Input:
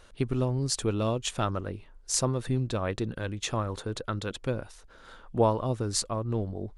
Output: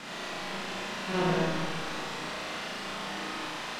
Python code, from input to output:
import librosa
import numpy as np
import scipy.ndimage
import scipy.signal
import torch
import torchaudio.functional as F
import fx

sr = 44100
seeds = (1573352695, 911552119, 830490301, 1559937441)

y = np.r_[np.sort(x[:len(x) // 256 * 256].reshape(-1, 256), axis=1).ravel(), x[len(x) // 256 * 256:]]
y = fx.doppler_pass(y, sr, speed_mps=30, closest_m=3.2, pass_at_s=2.18)
y = fx.stretch_vocoder(y, sr, factor=0.56)
y = fx.quant_dither(y, sr, seeds[0], bits=6, dither='triangular')
y = scipy.signal.sosfilt(scipy.signal.butter(2, 3000.0, 'lowpass', fs=sr, output='sos'), y)
y = fx.low_shelf_res(y, sr, hz=130.0, db=-9.5, q=1.5)
y = fx.notch(y, sr, hz=2200.0, q=25.0)
y = fx.room_flutter(y, sr, wall_m=6.1, rt60_s=1.0)
y = fx.rev_freeverb(y, sr, rt60_s=2.2, hf_ratio=0.5, predelay_ms=30, drr_db=-1.5)